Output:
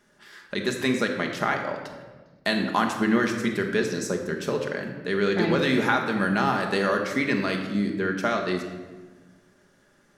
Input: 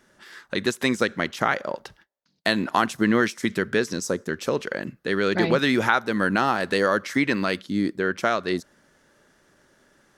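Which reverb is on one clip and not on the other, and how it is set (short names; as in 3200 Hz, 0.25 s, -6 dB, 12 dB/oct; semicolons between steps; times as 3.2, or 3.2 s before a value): shoebox room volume 1100 m³, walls mixed, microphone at 1.3 m; gain -4 dB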